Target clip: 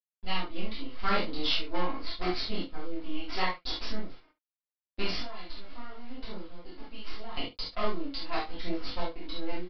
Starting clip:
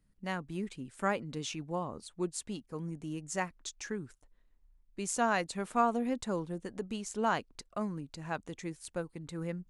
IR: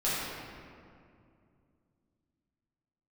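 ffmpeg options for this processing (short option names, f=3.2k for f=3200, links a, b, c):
-filter_complex "[0:a]highpass=170,bandreject=f=1.5k:w=5.9,asettb=1/sr,asplit=3[a][b][c];[a]atrim=end=5.164[d];[b]atrim=start=5.16:end=7.37,asetpts=PTS-STARTPTS,afade=t=in:d=0.004:c=qsin,afade=t=out:st=2.206:d=0.004:c=qsin,acompressor=threshold=-47dB:ratio=4[e];[c]atrim=start=7.366[f];[d][e]acrossfade=d=0.004:c1=hsin:c2=qsin[g];[g][f]acrossfade=d=0.004:c1=qsin:c2=hsin,aexciter=amount=3.8:drive=3.8:freq=2.8k,acrusher=bits=6:dc=4:mix=0:aa=0.000001,aphaser=in_gain=1:out_gain=1:delay=3.7:decay=0.49:speed=0.8:type=sinusoidal,aecho=1:1:22|69:0.596|0.168[h];[1:a]atrim=start_sample=2205,atrim=end_sample=6174,asetrate=74970,aresample=44100[i];[h][i]afir=irnorm=-1:irlink=0,aresample=11025,aresample=44100"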